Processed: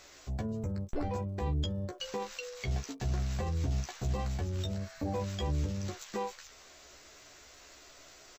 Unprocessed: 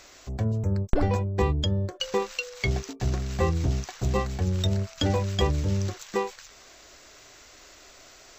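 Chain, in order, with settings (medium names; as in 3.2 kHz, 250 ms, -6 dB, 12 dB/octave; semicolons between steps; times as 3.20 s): spectral replace 4.84–5.12 s, 1.2–11 kHz before; peak limiter -21.5 dBFS, peak gain reduction 11.5 dB; crackle 100 per s -54 dBFS; doubling 14 ms -4 dB; trim -5.5 dB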